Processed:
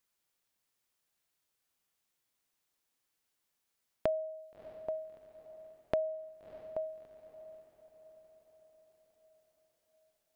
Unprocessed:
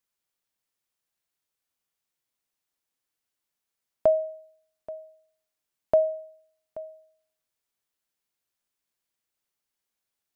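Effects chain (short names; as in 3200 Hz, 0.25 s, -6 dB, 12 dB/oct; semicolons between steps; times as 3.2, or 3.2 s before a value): compressor 3:1, threshold -37 dBFS, peak gain reduction 15 dB; diffused feedback echo 0.642 s, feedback 51%, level -14.5 dB; gain +2.5 dB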